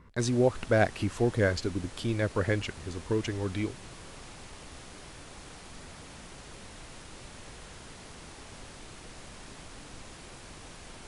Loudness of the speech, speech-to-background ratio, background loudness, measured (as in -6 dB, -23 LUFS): -29.5 LUFS, 17.5 dB, -47.0 LUFS